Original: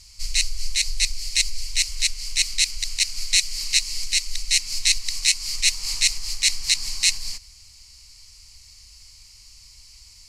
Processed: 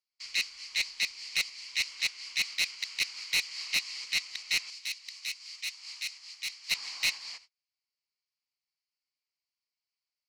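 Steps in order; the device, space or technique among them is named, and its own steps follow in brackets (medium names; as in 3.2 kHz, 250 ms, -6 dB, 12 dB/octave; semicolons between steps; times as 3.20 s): walkie-talkie (band-pass 580–3000 Hz; hard clipper -22.5 dBFS, distortion -12 dB; gate -51 dBFS, range -35 dB); 4.70–6.71 s: amplifier tone stack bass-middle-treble 5-5-5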